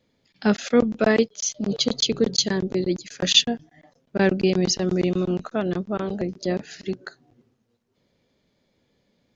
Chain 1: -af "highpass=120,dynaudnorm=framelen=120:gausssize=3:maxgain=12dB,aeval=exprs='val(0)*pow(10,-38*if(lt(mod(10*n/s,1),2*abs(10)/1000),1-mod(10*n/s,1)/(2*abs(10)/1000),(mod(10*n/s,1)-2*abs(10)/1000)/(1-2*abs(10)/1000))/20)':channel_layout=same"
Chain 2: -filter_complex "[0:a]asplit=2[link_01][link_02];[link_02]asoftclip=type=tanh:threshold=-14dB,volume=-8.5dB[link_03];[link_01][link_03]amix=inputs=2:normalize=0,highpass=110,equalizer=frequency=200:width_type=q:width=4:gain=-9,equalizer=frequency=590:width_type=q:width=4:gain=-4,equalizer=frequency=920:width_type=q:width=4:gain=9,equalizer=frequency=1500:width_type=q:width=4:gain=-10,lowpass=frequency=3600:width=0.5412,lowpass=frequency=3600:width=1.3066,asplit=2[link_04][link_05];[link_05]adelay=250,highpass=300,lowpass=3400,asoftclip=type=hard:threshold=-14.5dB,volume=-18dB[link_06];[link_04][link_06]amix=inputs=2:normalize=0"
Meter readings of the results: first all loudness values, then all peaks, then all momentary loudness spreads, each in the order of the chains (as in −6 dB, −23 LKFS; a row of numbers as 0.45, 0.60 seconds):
−25.0, −23.5 LKFS; −1.5, −5.0 dBFS; 7, 13 LU